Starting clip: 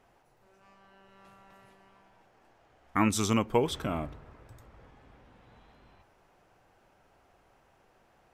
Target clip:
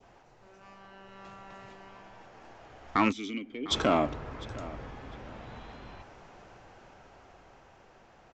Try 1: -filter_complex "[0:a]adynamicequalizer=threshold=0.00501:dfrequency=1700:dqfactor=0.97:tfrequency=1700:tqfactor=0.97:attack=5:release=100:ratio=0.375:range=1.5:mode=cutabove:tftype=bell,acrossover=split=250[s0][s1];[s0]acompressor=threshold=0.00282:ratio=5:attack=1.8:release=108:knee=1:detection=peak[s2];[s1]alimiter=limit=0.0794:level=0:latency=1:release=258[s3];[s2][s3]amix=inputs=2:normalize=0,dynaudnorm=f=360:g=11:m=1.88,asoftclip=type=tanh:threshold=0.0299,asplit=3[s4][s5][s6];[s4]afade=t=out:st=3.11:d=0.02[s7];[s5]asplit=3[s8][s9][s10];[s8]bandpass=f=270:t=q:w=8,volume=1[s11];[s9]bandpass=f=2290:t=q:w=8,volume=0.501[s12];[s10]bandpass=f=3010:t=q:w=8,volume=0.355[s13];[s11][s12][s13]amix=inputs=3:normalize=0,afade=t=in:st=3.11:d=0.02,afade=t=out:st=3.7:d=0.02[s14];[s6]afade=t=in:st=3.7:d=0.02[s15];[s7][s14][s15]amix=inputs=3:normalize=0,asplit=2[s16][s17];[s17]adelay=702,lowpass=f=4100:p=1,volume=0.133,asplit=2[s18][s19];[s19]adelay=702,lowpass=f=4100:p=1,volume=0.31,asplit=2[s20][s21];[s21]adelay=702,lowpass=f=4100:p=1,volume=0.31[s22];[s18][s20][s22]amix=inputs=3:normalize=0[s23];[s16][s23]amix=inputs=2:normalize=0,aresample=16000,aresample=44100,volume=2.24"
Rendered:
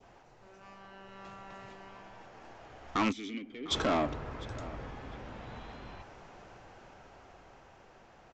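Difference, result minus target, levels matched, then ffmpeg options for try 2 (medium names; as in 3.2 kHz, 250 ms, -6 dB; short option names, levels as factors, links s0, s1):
saturation: distortion +9 dB
-filter_complex "[0:a]adynamicequalizer=threshold=0.00501:dfrequency=1700:dqfactor=0.97:tfrequency=1700:tqfactor=0.97:attack=5:release=100:ratio=0.375:range=1.5:mode=cutabove:tftype=bell,acrossover=split=250[s0][s1];[s0]acompressor=threshold=0.00282:ratio=5:attack=1.8:release=108:knee=1:detection=peak[s2];[s1]alimiter=limit=0.0794:level=0:latency=1:release=258[s3];[s2][s3]amix=inputs=2:normalize=0,dynaudnorm=f=360:g=11:m=1.88,asoftclip=type=tanh:threshold=0.0891,asplit=3[s4][s5][s6];[s4]afade=t=out:st=3.11:d=0.02[s7];[s5]asplit=3[s8][s9][s10];[s8]bandpass=f=270:t=q:w=8,volume=1[s11];[s9]bandpass=f=2290:t=q:w=8,volume=0.501[s12];[s10]bandpass=f=3010:t=q:w=8,volume=0.355[s13];[s11][s12][s13]amix=inputs=3:normalize=0,afade=t=in:st=3.11:d=0.02,afade=t=out:st=3.7:d=0.02[s14];[s6]afade=t=in:st=3.7:d=0.02[s15];[s7][s14][s15]amix=inputs=3:normalize=0,asplit=2[s16][s17];[s17]adelay=702,lowpass=f=4100:p=1,volume=0.133,asplit=2[s18][s19];[s19]adelay=702,lowpass=f=4100:p=1,volume=0.31,asplit=2[s20][s21];[s21]adelay=702,lowpass=f=4100:p=1,volume=0.31[s22];[s18][s20][s22]amix=inputs=3:normalize=0[s23];[s16][s23]amix=inputs=2:normalize=0,aresample=16000,aresample=44100,volume=2.24"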